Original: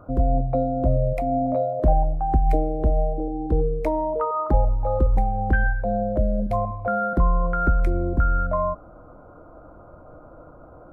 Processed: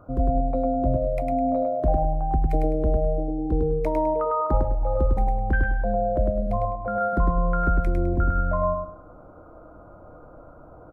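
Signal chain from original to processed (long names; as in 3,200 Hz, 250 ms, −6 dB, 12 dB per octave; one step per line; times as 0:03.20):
repeating echo 103 ms, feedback 27%, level −3.5 dB
speech leveller 2 s
0:06.51–0:07.01: high-shelf EQ 2,000 Hz −9 dB
level −3.5 dB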